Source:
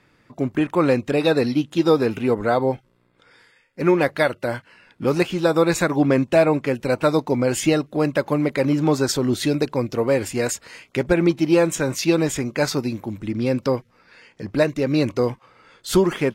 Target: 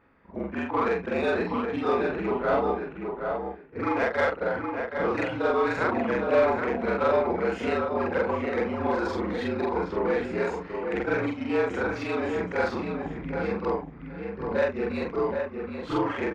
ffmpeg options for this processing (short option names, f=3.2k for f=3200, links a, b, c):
-filter_complex "[0:a]afftfilt=real='re':imag='-im':win_size=4096:overlap=0.75,acrossover=split=580|1200[a][b][c];[a]acompressor=threshold=-34dB:ratio=4[d];[d][b][c]amix=inputs=3:normalize=0,asplit=2[e][f];[f]highpass=f=720:p=1,volume=14dB,asoftclip=type=tanh:threshold=-11.5dB[g];[e][g]amix=inputs=2:normalize=0,lowpass=f=1.5k:p=1,volume=-6dB,afreqshift=-58,adynamicsmooth=sensitivity=1:basefreq=2.2k,asplit=2[h][i];[i]adelay=772,lowpass=f=2.5k:p=1,volume=-5dB,asplit=2[j][k];[k]adelay=772,lowpass=f=2.5k:p=1,volume=0.18,asplit=2[l][m];[m]adelay=772,lowpass=f=2.5k:p=1,volume=0.18[n];[j][l][n]amix=inputs=3:normalize=0[o];[h][o]amix=inputs=2:normalize=0"